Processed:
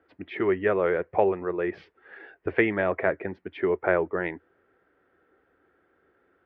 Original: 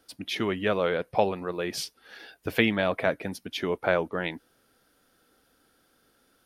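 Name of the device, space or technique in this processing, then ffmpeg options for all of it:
bass cabinet: -af "highpass=63,equalizer=f=83:t=q:w=4:g=5,equalizer=f=130:t=q:w=4:g=-8,equalizer=f=230:t=q:w=4:g=-8,equalizer=f=380:t=q:w=4:g=9,equalizer=f=1.9k:t=q:w=4:g=5,lowpass=f=2.1k:w=0.5412,lowpass=f=2.1k:w=1.3066"

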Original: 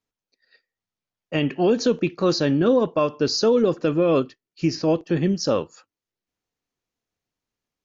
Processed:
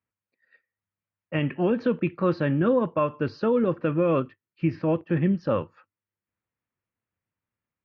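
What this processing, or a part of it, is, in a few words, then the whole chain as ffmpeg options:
bass cabinet: -af "highpass=64,equalizer=f=100:t=q:w=4:g=6,equalizer=f=280:t=q:w=4:g=-5,equalizer=f=420:t=q:w=4:g=-8,equalizer=f=720:t=q:w=4:g=-7,lowpass=f=2.4k:w=0.5412,lowpass=f=2.4k:w=1.3066"

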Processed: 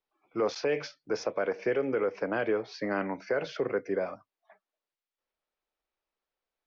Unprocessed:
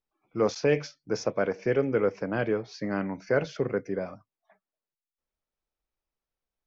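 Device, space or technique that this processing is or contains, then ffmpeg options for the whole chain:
DJ mixer with the lows and highs turned down: -filter_complex "[0:a]acrossover=split=300 5200:gain=0.224 1 0.0794[a][b][c];[a][b][c]amix=inputs=3:normalize=0,alimiter=limit=-23dB:level=0:latency=1:release=104,volume=4dB"

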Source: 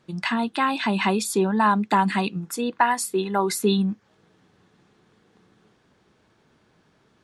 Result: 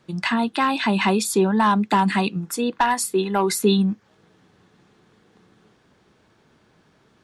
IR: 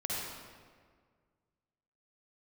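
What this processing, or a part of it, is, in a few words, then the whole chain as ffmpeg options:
one-band saturation: -filter_complex "[0:a]acrossover=split=470|3300[a][b][c];[b]asoftclip=type=tanh:threshold=-16dB[d];[a][d][c]amix=inputs=3:normalize=0,volume=3dB"

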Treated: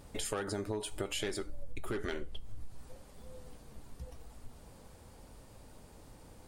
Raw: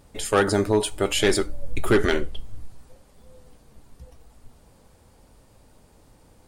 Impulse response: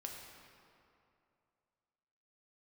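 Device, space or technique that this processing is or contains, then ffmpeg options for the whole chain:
serial compression, peaks first: -af "acompressor=threshold=-29dB:ratio=6,acompressor=threshold=-41dB:ratio=1.5"

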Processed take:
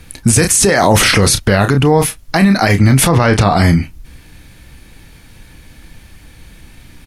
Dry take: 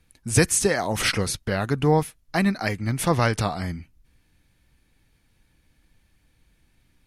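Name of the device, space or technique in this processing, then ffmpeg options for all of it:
loud club master: -filter_complex "[0:a]asplit=3[a][b][c];[a]afade=t=out:st=3.08:d=0.02[d];[b]aemphasis=mode=reproduction:type=50kf,afade=t=in:st=3.08:d=0.02,afade=t=out:st=3.56:d=0.02[e];[c]afade=t=in:st=3.56:d=0.02[f];[d][e][f]amix=inputs=3:normalize=0,asplit=2[g][h];[h]adelay=30,volume=-11dB[i];[g][i]amix=inputs=2:normalize=0,acompressor=threshold=-27dB:ratio=1.5,asoftclip=type=hard:threshold=-12.5dB,alimiter=level_in=24.5dB:limit=-1dB:release=50:level=0:latency=1,volume=-1dB"

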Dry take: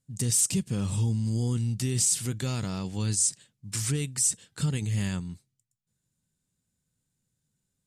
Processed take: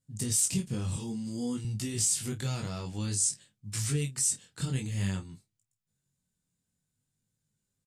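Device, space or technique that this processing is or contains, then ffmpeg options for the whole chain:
double-tracked vocal: -filter_complex "[0:a]asplit=2[a][b];[b]adelay=29,volume=-11.5dB[c];[a][c]amix=inputs=2:normalize=0,flanger=delay=19:depth=3.9:speed=0.54,asettb=1/sr,asplit=3[d][e][f];[d]atrim=end=0.964[g];[e]atrim=start=0.96:end=1.65,asetpts=PTS-STARTPTS,afade=t=in:d=0.004:c=qsin,afade=t=out:st=0.686:d=0.004:c=qsin,highpass=f=140:w=0.5412,highpass=f=140:w=1.3066[h];[f]atrim=start=1.646[i];[g][h]acrossfade=d=0.004:c1=hsin:c2=qsin[j];[j][i]acrossfade=d=0.004:c1=qsin:c2=hsin"

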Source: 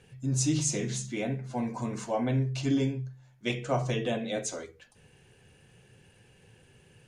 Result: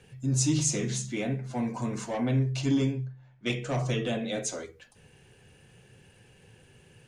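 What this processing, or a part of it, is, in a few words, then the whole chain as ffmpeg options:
one-band saturation: -filter_complex "[0:a]acrossover=split=330|2100[a][b][c];[b]asoftclip=type=tanh:threshold=-32dB[d];[a][d][c]amix=inputs=3:normalize=0,asettb=1/sr,asplit=3[e][f][g];[e]atrim=end=3.054[h];[f]atrim=start=3.05:end=3.46,asetpts=PTS-STARTPTS,afade=t=in:d=0.004:c=qsin,afade=t=out:st=0.406:d=0.004:c=qsin,lowpass=2.9k[i];[g]atrim=start=3.456[j];[h][i]acrossfade=d=0.004:c1=hsin:c2=qsin[k];[k][j]acrossfade=d=0.004:c1=qsin:c2=hsin,volume=2dB"

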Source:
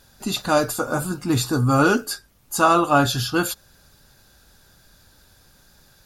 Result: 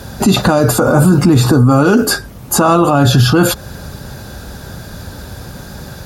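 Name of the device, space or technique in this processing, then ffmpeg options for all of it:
mastering chain: -filter_complex "[0:a]highpass=59,equalizer=f=320:t=o:w=0.38:g=-2.5,acrossover=split=210|2700[a][b][c];[a]acompressor=threshold=-27dB:ratio=4[d];[b]acompressor=threshold=-19dB:ratio=4[e];[c]acompressor=threshold=-30dB:ratio=4[f];[d][e][f]amix=inputs=3:normalize=0,acompressor=threshold=-31dB:ratio=1.5,tiltshelf=f=1.1k:g=6.5,alimiter=level_in=25dB:limit=-1dB:release=50:level=0:latency=1,volume=-1dB"

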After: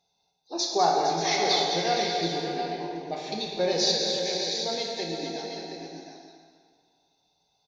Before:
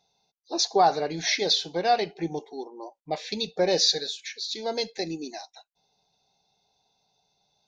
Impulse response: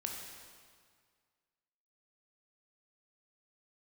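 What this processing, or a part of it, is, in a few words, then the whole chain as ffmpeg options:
stairwell: -filter_complex "[0:a]aecho=1:1:202|460|586|722|845:0.376|0.335|0.299|0.355|0.126[a];[1:a]atrim=start_sample=2205[b];[a][b]afir=irnorm=-1:irlink=0,volume=-2dB"

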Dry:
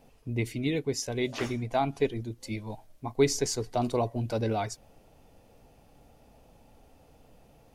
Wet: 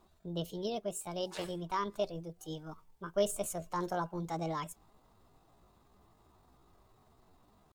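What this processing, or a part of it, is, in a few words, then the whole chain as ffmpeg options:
chipmunk voice: -af "asetrate=64194,aresample=44100,atempo=0.686977,volume=-7.5dB"

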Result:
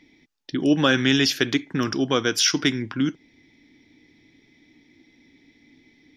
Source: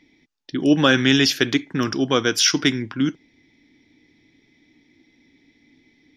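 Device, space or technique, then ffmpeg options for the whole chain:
parallel compression: -filter_complex "[0:a]asplit=2[a][b];[b]acompressor=threshold=-27dB:ratio=6,volume=0dB[c];[a][c]amix=inputs=2:normalize=0,volume=-4.5dB"

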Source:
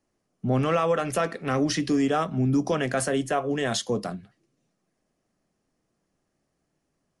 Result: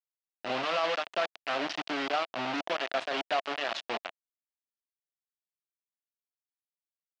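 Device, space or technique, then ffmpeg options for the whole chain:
hand-held game console: -af "acrusher=bits=3:mix=0:aa=0.000001,highpass=440,equalizer=f=460:t=q:w=4:g=-7,equalizer=f=670:t=q:w=4:g=6,equalizer=f=2.8k:t=q:w=4:g=4,lowpass=f=4.5k:w=0.5412,lowpass=f=4.5k:w=1.3066,volume=-6dB"

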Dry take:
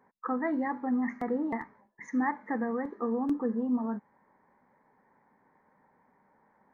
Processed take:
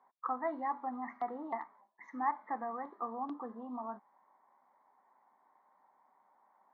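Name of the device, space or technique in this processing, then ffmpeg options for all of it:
phone earpiece: -af "highpass=470,equalizer=f=470:t=q:w=4:g=-9,equalizer=f=720:t=q:w=4:g=7,equalizer=f=1.1k:t=q:w=4:g=7,equalizer=f=1.7k:t=q:w=4:g=-8,equalizer=f=2.5k:t=q:w=4:g=-6,equalizer=f=3.6k:t=q:w=4:g=4,lowpass=f=4.1k:w=0.5412,lowpass=f=4.1k:w=1.3066,volume=-4dB"

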